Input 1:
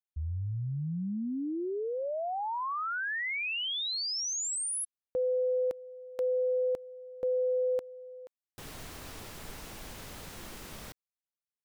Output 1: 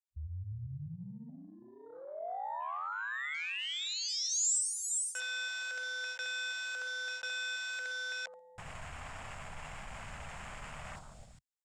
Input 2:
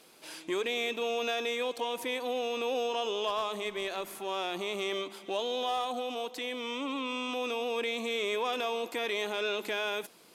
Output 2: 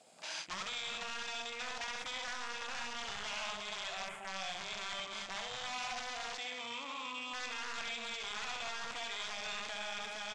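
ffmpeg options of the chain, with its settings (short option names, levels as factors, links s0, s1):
-filter_complex "[0:a]acrossover=split=1900[s0][s1];[s0]aeval=exprs='(mod(25.1*val(0)+1,2)-1)/25.1':c=same[s2];[s1]bandreject=f=6000:w=9.3[s3];[s2][s3]amix=inputs=2:normalize=0,aecho=1:1:55|63|68|122|331|466:0.112|0.178|0.708|0.224|0.282|0.282,areverse,acompressor=threshold=0.00708:ratio=8:attack=4.1:release=109:knee=1:detection=rms,areverse,afwtdn=0.00224,firequalizer=gain_entry='entry(130,0);entry(350,-17);entry(670,3);entry(4300,4);entry(7500,14);entry(13000,-16)':delay=0.05:min_phase=1,volume=1.58"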